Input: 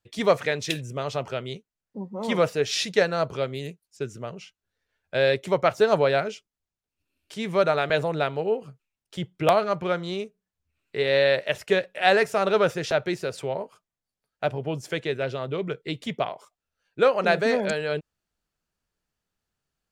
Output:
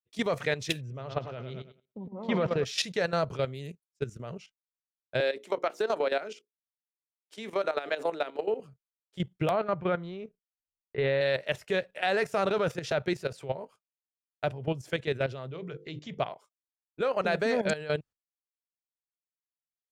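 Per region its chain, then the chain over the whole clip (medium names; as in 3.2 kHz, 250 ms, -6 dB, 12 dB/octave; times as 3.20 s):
0.81–2.65 s: distance through air 210 m + feedback delay 106 ms, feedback 45%, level -8 dB
5.20–8.60 s: steep high-pass 230 Hz + hum notches 60/120/180/240/300/360/420/480 Hz + compression 12:1, threshold -21 dBFS
9.51–11.21 s: low-pass 2.5 kHz + bass shelf 69 Hz +10 dB
15.51–16.19 s: hum notches 50/100/150/200/250/300/350/400/450/500 Hz + careless resampling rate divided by 3×, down none, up filtered
whole clip: expander -39 dBFS; dynamic bell 130 Hz, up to +5 dB, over -44 dBFS, Q 2; level held to a coarse grid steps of 13 dB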